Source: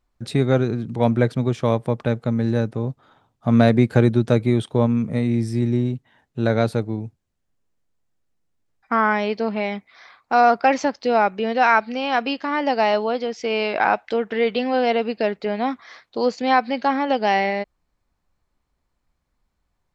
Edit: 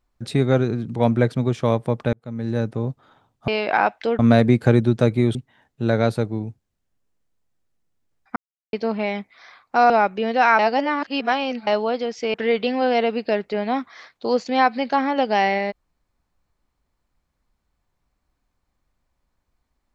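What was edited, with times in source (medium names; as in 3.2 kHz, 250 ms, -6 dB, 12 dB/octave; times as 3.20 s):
2.13–2.70 s: fade in
4.64–5.92 s: delete
8.93–9.30 s: mute
10.47–11.11 s: delete
11.80–12.88 s: reverse
13.55–14.26 s: move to 3.48 s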